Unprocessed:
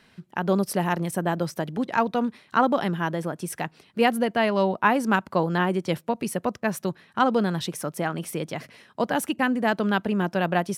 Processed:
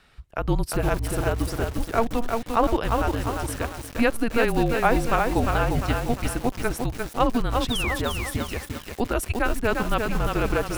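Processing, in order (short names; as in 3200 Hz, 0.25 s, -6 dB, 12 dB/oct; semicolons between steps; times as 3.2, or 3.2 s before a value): painted sound fall, 7.7–7.96, 1900–4100 Hz -29 dBFS; frequency shift -230 Hz; lo-fi delay 0.35 s, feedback 55%, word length 6-bit, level -3.5 dB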